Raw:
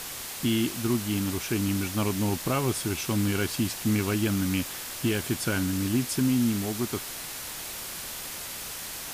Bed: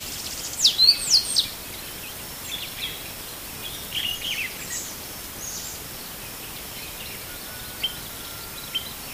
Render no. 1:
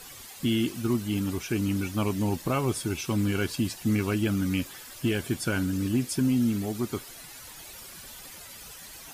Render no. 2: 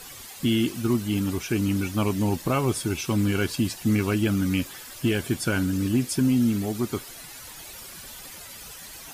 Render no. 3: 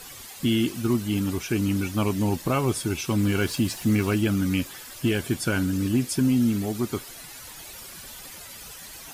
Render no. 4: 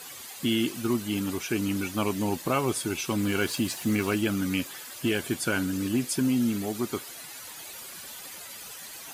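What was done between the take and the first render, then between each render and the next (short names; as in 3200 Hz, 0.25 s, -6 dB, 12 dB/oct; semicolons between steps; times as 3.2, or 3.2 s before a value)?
denoiser 12 dB, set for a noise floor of -38 dBFS
gain +3 dB
3.23–4.21 G.711 law mismatch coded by mu
HPF 270 Hz 6 dB/oct; notch 5400 Hz, Q 23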